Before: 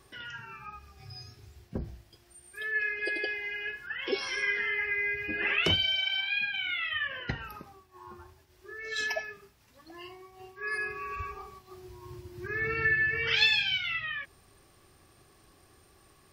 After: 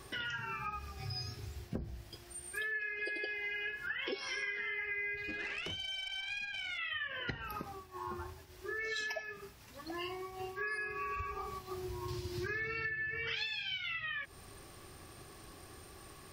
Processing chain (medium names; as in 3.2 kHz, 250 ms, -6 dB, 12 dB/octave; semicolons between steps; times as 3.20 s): 12.08–12.90 s: peaking EQ 4.5 kHz +10 dB 1.4 oct; compression 12:1, threshold -43 dBFS, peak gain reduction 23.5 dB; 5.17–6.78 s: valve stage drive 39 dB, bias 0.4; trim +7 dB